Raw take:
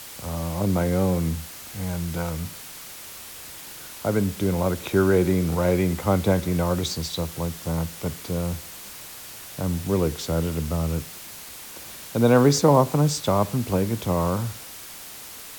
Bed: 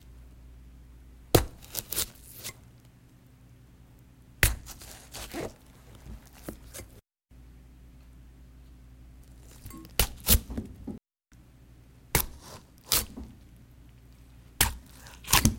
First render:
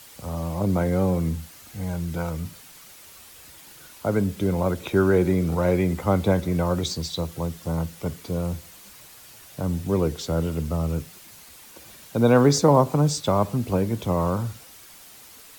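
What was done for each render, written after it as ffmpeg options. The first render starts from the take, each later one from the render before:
-af "afftdn=nr=8:nf=-40"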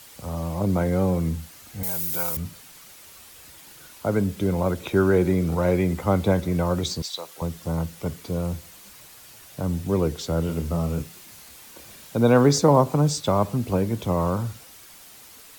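-filter_complex "[0:a]asettb=1/sr,asplit=3[a][b][c];[a]atrim=end=1.834[d];[b]atrim=start=1.83:end=2.37,asetpts=PTS-STARTPTS,afade=t=in:d=0.004:c=qsin,afade=t=out:st=0.536:d=0.004:c=qsin,aemphasis=mode=production:type=riaa[e];[c]atrim=start=2.366[f];[d][e]acrossfade=d=0.004:c1=hsin:c2=qsin[g];[g][f]acrossfade=d=0.004:c1=qsin:c2=hsin,asettb=1/sr,asplit=3[h][i][j];[h]atrim=end=7.024[k];[i]atrim=start=7.02:end=7.42,asetpts=PTS-STARTPTS,afade=t=in:d=0.004:c=qsin,afade=t=out:st=0.396:d=0.004:c=qsin,highpass=670[l];[j]atrim=start=7.416[m];[k][l]acrossfade=d=0.004:c1=hsin:c2=qsin[n];[n][m]acrossfade=d=0.004:c1=qsin:c2=hsin,asettb=1/sr,asplit=3[o][p][q];[o]atrim=end=10.464[r];[p]atrim=start=10.46:end=12.16,asetpts=PTS-STARTPTS,afade=t=in:d=0.004:c=qsin,afade=t=out:st=1.696:d=0.004:c=qsin,asplit=2[s][t];[t]adelay=29,volume=-6dB[u];[s][u]amix=inputs=2:normalize=0,atrim=end_sample=74970[v];[q]atrim=start=12.156[w];[r][v]acrossfade=d=0.004:c1=hsin:c2=qsin[x];[x][w]acrossfade=d=0.004:c1=qsin:c2=hsin"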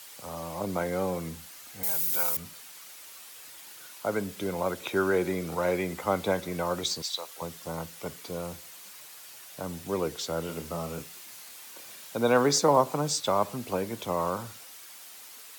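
-af "highpass=f=690:p=1"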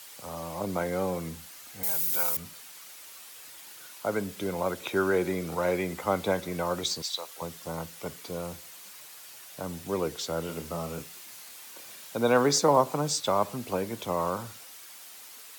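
-af anull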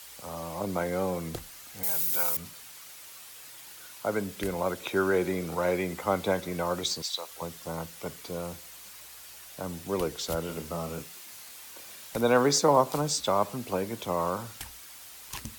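-filter_complex "[1:a]volume=-18.5dB[a];[0:a][a]amix=inputs=2:normalize=0"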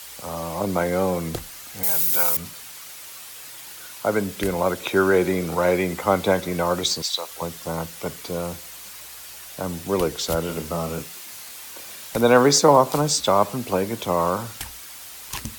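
-af "volume=7.5dB,alimiter=limit=-3dB:level=0:latency=1"

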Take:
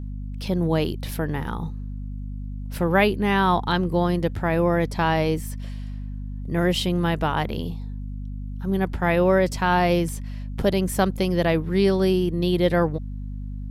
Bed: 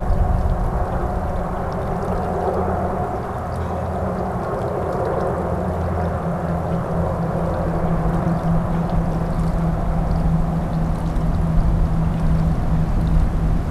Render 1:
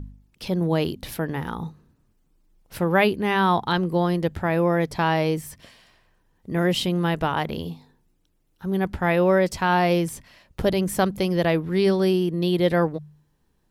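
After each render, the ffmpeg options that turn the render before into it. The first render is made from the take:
-af "bandreject=f=50:t=h:w=4,bandreject=f=100:t=h:w=4,bandreject=f=150:t=h:w=4,bandreject=f=200:t=h:w=4,bandreject=f=250:t=h:w=4"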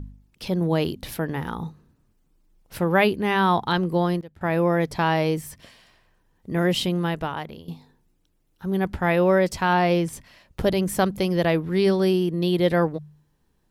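-filter_complex "[0:a]asettb=1/sr,asplit=3[a][b][c];[a]atrim=end=9.734[d];[b]atrim=start=9.73:end=10.13,asetpts=PTS-STARTPTS,afade=t=in:d=0.004:c=qsin,afade=t=out:st=0.396:d=0.004:c=qsin,highshelf=f=8.9k:g=-10[e];[c]atrim=start=10.126[f];[d][e]acrossfade=d=0.004:c1=hsin:c2=qsin[g];[g][f]acrossfade=d=0.004:c1=qsin:c2=hsin,asplit=4[h][i][j][k];[h]atrim=end=4.21,asetpts=PTS-STARTPTS,afade=t=out:st=3.95:d=0.26:c=log:silence=0.11885[l];[i]atrim=start=4.21:end=4.41,asetpts=PTS-STARTPTS,volume=-18.5dB[m];[j]atrim=start=4.41:end=7.68,asetpts=PTS-STARTPTS,afade=t=in:d=0.26:c=log:silence=0.11885,afade=t=out:st=2.45:d=0.82:silence=0.16788[n];[k]atrim=start=7.68,asetpts=PTS-STARTPTS,afade=t=in:d=0.004:c=hsin:silence=0.16788[o];[l][m][n][o]concat=n=4:v=0:a=1"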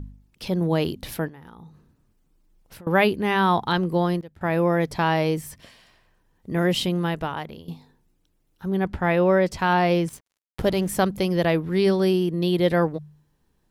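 -filter_complex "[0:a]asettb=1/sr,asplit=3[a][b][c];[a]atrim=end=1.284[d];[b]atrim=start=1.28:end=2.87,asetpts=PTS-STARTPTS,afade=t=in:d=0.004:c=qsin,afade=t=out:st=1.586:d=0.004:c=qsin,acompressor=threshold=-41dB:ratio=8:attack=3.2:release=140:knee=1:detection=peak[e];[c]atrim=start=2.866[f];[d][e]acrossfade=d=0.004:c1=hsin:c2=qsin[g];[g][f]acrossfade=d=0.004:c1=qsin:c2=hsin,asettb=1/sr,asplit=3[h][i][j];[h]atrim=end=8.684[k];[i]atrim=start=8.68:end=9.59,asetpts=PTS-STARTPTS,afade=t=in:d=0.004:c=qsin,afade=t=out:st=0.906:d=0.004:c=qsin,highshelf=f=5.7k:g=-8[l];[j]atrim=start=9.586[m];[k][l]acrossfade=d=0.004:c1=hsin:c2=qsin[n];[n][m]acrossfade=d=0.004:c1=qsin:c2=hsin,asettb=1/sr,asplit=3[o][p][q];[o]atrim=end=10.094[r];[p]atrim=start=10.09:end=10.89,asetpts=PTS-STARTPTS,afade=t=in:d=0.004:c=qsin,afade=t=out:st=0.796:d=0.004:c=qsin,aeval=exprs='sgn(val(0))*max(abs(val(0))-0.00668,0)':c=same[s];[q]atrim=start=10.886[t];[r][s]acrossfade=d=0.004:c1=hsin:c2=qsin[u];[u][t]acrossfade=d=0.004:c1=qsin:c2=hsin"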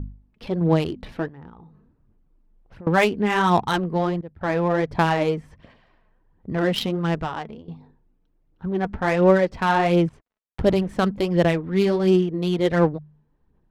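-af "aphaser=in_gain=1:out_gain=1:delay=4.7:decay=0.43:speed=1.4:type=sinusoidal,adynamicsmooth=sensitivity=2.5:basefreq=1.8k"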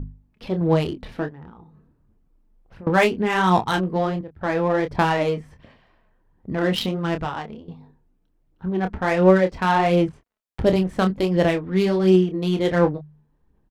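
-filter_complex "[0:a]asplit=2[a][b];[b]adelay=27,volume=-8dB[c];[a][c]amix=inputs=2:normalize=0"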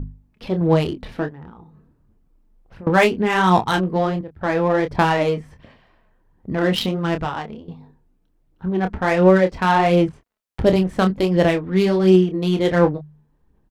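-af "volume=2.5dB,alimiter=limit=-2dB:level=0:latency=1"

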